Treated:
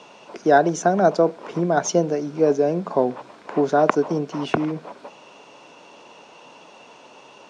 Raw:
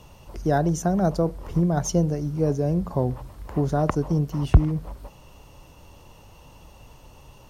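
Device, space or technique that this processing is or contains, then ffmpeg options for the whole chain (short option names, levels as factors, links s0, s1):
television speaker: -af "highpass=f=220:w=0.5412,highpass=f=220:w=1.3066,equalizer=f=430:t=q:w=4:g=4,equalizer=f=670:t=q:w=4:g=5,equalizer=f=990:t=q:w=4:g=3,equalizer=f=1500:t=q:w=4:g=7,equalizer=f=2400:t=q:w=4:g=7,equalizer=f=3600:t=q:w=4:g=4,lowpass=f=7100:w=0.5412,lowpass=f=7100:w=1.3066,volume=1.58"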